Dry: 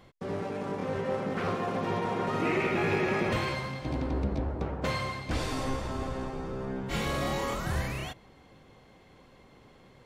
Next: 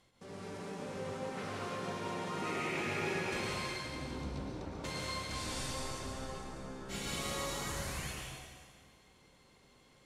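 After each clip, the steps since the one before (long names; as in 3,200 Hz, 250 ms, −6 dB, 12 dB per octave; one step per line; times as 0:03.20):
Chebyshev low-pass filter 9,300 Hz, order 2
first-order pre-emphasis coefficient 0.8
dense smooth reverb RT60 1.9 s, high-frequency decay 0.9×, pre-delay 95 ms, DRR −3.5 dB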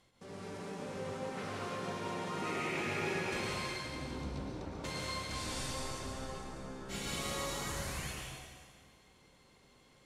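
no processing that can be heard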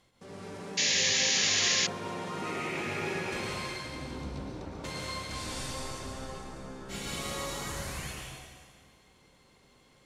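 sound drawn into the spectrogram noise, 0:00.77–0:01.87, 1,600–7,200 Hz −29 dBFS
level +2 dB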